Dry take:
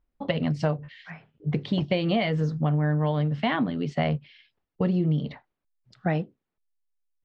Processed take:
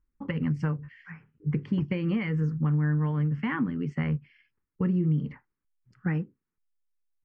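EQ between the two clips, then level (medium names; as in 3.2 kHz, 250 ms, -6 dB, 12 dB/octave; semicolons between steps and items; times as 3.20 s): treble shelf 2.9 kHz -8.5 dB; static phaser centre 1.6 kHz, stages 4; 0.0 dB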